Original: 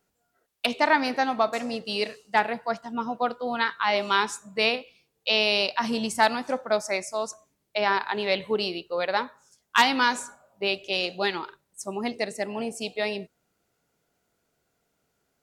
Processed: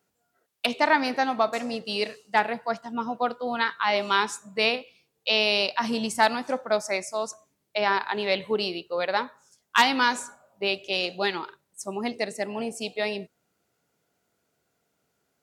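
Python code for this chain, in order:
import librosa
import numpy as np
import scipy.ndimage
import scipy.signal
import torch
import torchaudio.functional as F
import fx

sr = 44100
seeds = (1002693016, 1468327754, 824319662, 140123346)

y = scipy.signal.sosfilt(scipy.signal.butter(2, 79.0, 'highpass', fs=sr, output='sos'), x)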